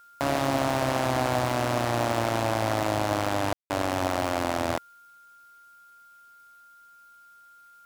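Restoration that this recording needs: clip repair -14 dBFS; notch 1400 Hz, Q 30; room tone fill 3.53–3.7; expander -46 dBFS, range -21 dB

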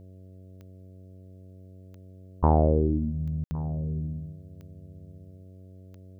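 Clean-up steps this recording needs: de-click; de-hum 93.5 Hz, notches 7; room tone fill 3.44–3.51; inverse comb 1.112 s -20 dB

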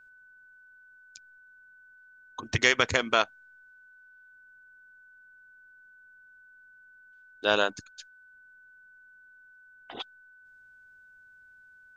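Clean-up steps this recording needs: notch 1500 Hz, Q 30

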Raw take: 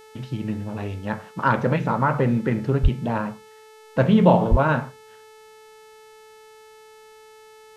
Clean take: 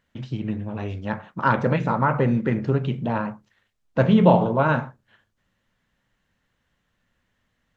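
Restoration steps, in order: de-hum 435.4 Hz, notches 31; 2.82–2.94 HPF 140 Hz 24 dB/oct; 4.5–4.62 HPF 140 Hz 24 dB/oct

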